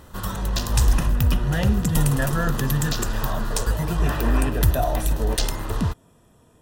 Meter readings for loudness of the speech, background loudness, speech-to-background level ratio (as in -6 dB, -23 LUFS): -27.5 LUFS, -25.0 LUFS, -2.5 dB